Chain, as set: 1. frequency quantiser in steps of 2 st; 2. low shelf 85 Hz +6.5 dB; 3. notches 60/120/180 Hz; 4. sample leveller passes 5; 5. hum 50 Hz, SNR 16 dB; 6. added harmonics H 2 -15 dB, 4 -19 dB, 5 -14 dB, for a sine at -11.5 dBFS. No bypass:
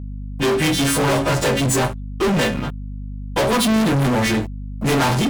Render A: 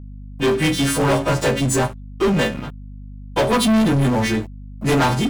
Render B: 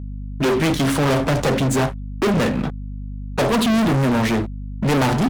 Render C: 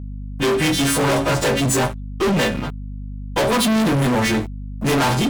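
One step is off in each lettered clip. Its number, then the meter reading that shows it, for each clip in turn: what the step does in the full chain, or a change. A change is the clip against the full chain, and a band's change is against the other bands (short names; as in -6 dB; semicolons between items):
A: 6, crest factor change -3.0 dB; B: 1, 8 kHz band -5.5 dB; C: 2, crest factor change -2.0 dB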